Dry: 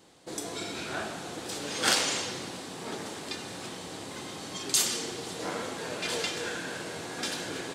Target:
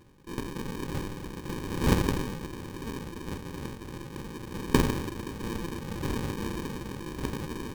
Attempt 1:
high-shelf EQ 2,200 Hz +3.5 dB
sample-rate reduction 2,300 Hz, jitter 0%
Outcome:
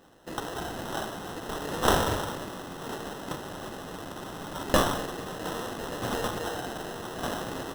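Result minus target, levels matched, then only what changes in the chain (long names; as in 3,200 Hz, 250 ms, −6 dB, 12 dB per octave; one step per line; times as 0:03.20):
sample-rate reduction: distortion −35 dB
change: sample-rate reduction 680 Hz, jitter 0%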